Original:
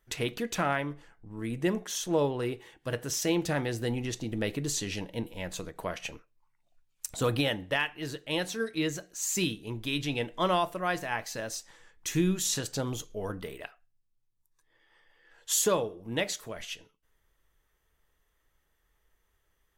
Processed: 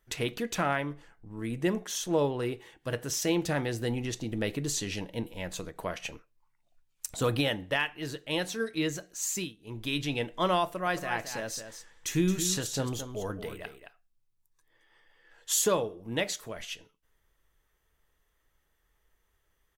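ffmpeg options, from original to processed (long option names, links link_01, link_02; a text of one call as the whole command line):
ffmpeg -i in.wav -filter_complex "[0:a]asplit=3[link_01][link_02][link_03];[link_01]afade=type=out:start_time=10.85:duration=0.02[link_04];[link_02]aecho=1:1:220:0.335,afade=type=in:start_time=10.85:duration=0.02,afade=type=out:start_time=15.53:duration=0.02[link_05];[link_03]afade=type=in:start_time=15.53:duration=0.02[link_06];[link_04][link_05][link_06]amix=inputs=3:normalize=0,asplit=3[link_07][link_08][link_09];[link_07]atrim=end=9.53,asetpts=PTS-STARTPTS,afade=type=out:start_time=9.27:duration=0.26:silence=0.133352[link_10];[link_08]atrim=start=9.53:end=9.57,asetpts=PTS-STARTPTS,volume=-17.5dB[link_11];[link_09]atrim=start=9.57,asetpts=PTS-STARTPTS,afade=type=in:duration=0.26:silence=0.133352[link_12];[link_10][link_11][link_12]concat=n=3:v=0:a=1" out.wav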